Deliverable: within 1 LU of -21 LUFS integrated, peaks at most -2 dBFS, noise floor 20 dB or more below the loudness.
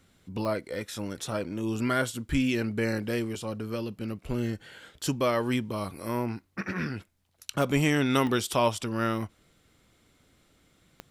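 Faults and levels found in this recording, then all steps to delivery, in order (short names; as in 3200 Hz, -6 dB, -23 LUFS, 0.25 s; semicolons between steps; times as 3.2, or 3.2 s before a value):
clicks 4; loudness -29.5 LUFS; peak -11.0 dBFS; loudness target -21.0 LUFS
-> de-click; gain +8.5 dB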